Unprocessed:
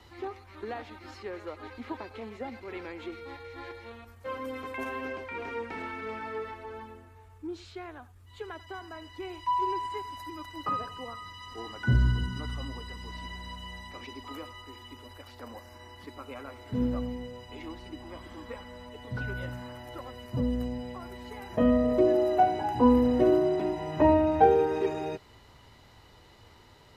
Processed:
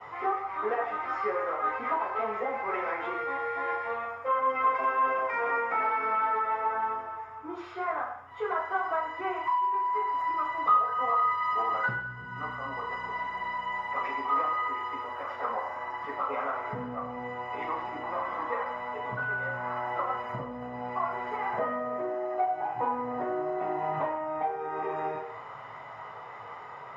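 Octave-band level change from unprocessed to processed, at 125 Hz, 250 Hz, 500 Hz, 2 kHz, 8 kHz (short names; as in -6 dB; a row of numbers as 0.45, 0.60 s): -12.5 dB, -12.0 dB, -4.0 dB, +7.5 dB, under -10 dB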